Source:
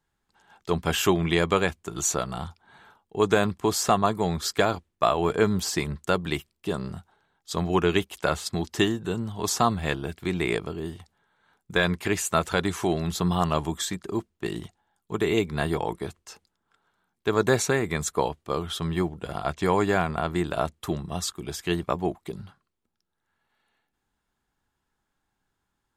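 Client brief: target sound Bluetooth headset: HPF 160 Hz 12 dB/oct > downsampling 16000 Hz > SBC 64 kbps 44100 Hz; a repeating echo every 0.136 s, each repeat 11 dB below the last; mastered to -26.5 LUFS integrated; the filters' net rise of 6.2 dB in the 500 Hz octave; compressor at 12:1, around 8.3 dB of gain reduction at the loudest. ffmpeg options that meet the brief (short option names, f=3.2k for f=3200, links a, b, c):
-af "equalizer=f=500:t=o:g=8,acompressor=threshold=-18dB:ratio=12,highpass=160,aecho=1:1:136|272|408:0.282|0.0789|0.0221,aresample=16000,aresample=44100" -ar 44100 -c:a sbc -b:a 64k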